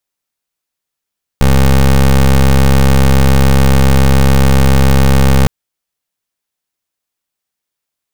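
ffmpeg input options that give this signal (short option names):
-f lavfi -i "aevalsrc='0.447*(2*lt(mod(67.1*t,1),0.2)-1)':d=4.06:s=44100"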